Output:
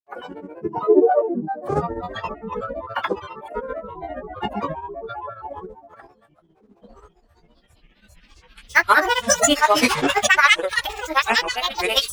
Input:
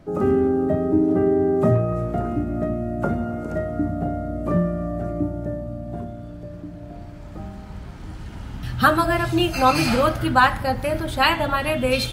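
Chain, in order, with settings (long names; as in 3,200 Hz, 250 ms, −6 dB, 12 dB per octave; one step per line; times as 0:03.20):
noise reduction from a noise print of the clip's start 21 dB
low shelf with overshoot 230 Hz −11.5 dB, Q 3
granular cloud 100 ms, grains 15 per second, pitch spread up and down by 12 semitones
formants moved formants +4 semitones
level +1.5 dB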